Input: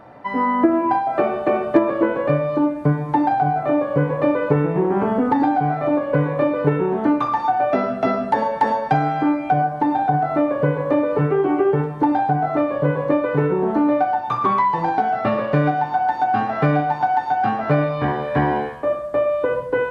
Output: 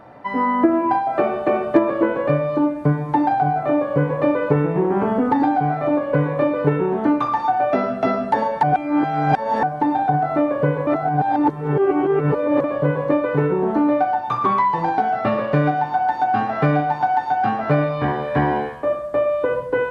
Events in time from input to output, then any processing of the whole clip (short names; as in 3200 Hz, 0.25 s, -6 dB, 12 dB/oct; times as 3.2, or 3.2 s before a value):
8.63–9.63 reverse
10.87–12.64 reverse